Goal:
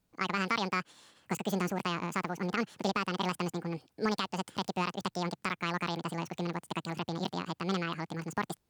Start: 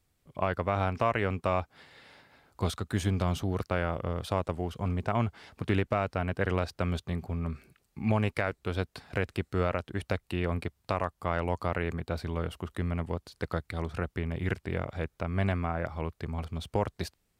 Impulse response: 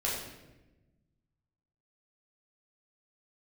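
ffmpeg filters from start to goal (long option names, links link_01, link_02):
-af "asetrate=88200,aresample=44100,volume=-3dB"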